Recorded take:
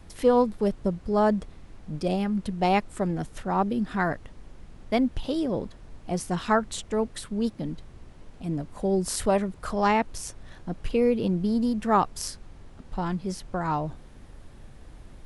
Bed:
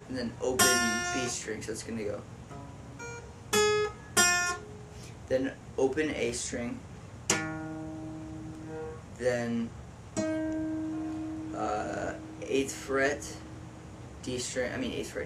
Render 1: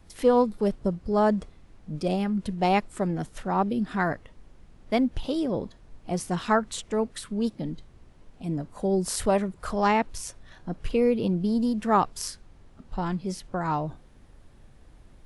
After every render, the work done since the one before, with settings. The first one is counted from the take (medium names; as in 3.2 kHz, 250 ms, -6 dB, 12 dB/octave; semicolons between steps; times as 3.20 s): noise print and reduce 6 dB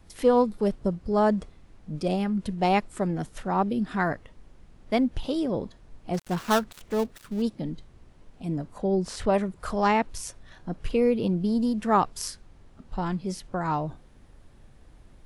6.14–7.42 s: dead-time distortion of 0.14 ms; 8.78–9.34 s: distance through air 97 m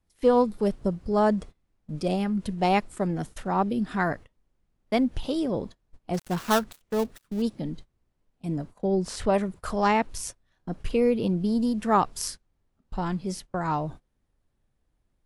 gate -39 dBFS, range -21 dB; treble shelf 8.1 kHz +4.5 dB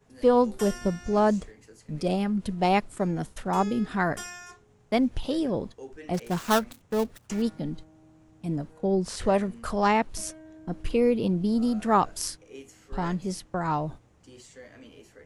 add bed -15.5 dB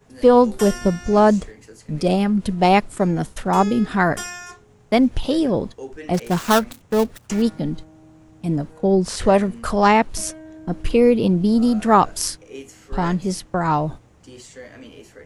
trim +8 dB; peak limiter -3 dBFS, peak gain reduction 2 dB